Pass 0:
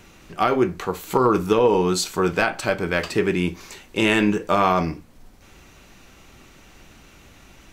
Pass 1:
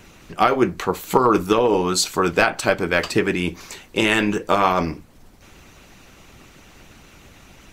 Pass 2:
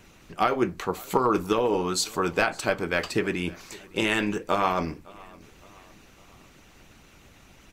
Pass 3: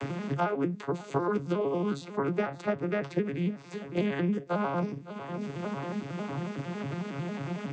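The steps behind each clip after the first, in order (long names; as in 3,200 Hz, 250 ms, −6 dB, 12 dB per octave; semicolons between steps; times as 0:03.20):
harmonic and percussive parts rebalanced percussive +9 dB; level −3.5 dB
repeating echo 560 ms, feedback 49%, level −23.5 dB; level −6.5 dB
vocoder with an arpeggio as carrier major triad, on C#3, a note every 91 ms; multiband upward and downward compressor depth 100%; level −3 dB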